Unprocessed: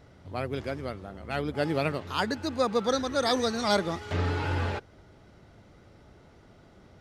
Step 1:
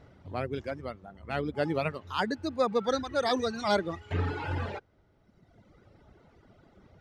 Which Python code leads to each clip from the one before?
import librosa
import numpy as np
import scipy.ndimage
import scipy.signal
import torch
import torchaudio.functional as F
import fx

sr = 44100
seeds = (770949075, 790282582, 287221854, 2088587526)

y = fx.dereverb_blind(x, sr, rt60_s=1.6)
y = fx.high_shelf(y, sr, hz=4800.0, db=-10.0)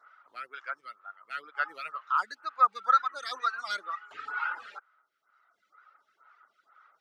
y = fx.highpass_res(x, sr, hz=1300.0, q=9.1)
y = fx.stagger_phaser(y, sr, hz=2.1)
y = F.gain(torch.from_numpy(y), -2.0).numpy()